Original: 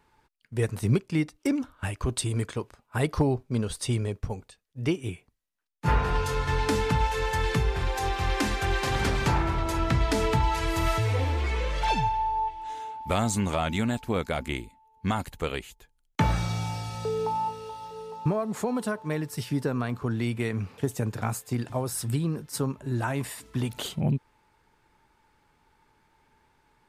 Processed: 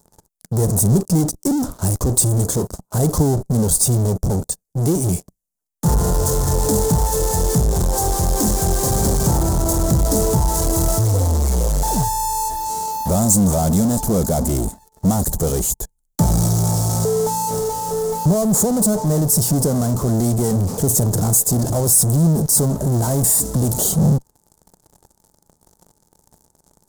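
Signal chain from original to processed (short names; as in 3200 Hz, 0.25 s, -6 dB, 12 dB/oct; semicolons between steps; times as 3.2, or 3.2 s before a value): in parallel at -7 dB: fuzz box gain 50 dB, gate -58 dBFS; on the sum: EQ curve 130 Hz 0 dB, 180 Hz +5 dB, 260 Hz -2 dB, 670 Hz -1 dB, 2500 Hz -26 dB, 7000 Hz +6 dB; gain +1.5 dB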